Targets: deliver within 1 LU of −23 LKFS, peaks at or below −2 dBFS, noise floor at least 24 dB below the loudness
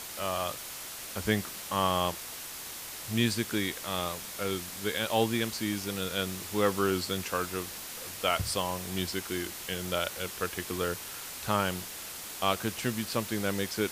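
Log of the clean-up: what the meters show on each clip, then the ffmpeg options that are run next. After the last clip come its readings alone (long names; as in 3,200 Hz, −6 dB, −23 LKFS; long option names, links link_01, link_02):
background noise floor −42 dBFS; target noise floor −56 dBFS; integrated loudness −32.0 LKFS; sample peak −11.5 dBFS; target loudness −23.0 LKFS
→ -af "afftdn=noise_reduction=14:noise_floor=-42"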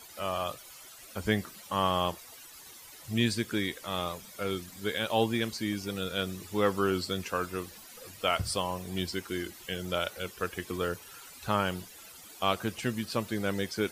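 background noise floor −50 dBFS; target noise floor −56 dBFS
→ -af "afftdn=noise_reduction=6:noise_floor=-50"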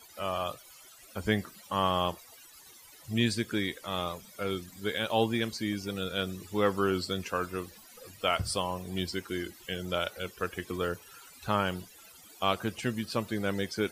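background noise floor −54 dBFS; target noise floor −56 dBFS
→ -af "afftdn=noise_reduction=6:noise_floor=-54"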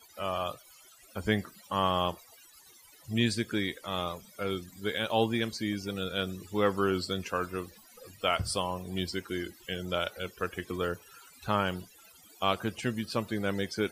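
background noise floor −57 dBFS; integrated loudness −32.0 LKFS; sample peak −12.0 dBFS; target loudness −23.0 LKFS
→ -af "volume=9dB"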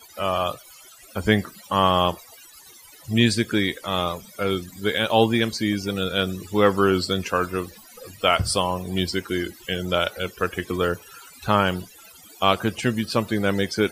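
integrated loudness −23.0 LKFS; sample peak −3.0 dBFS; background noise floor −48 dBFS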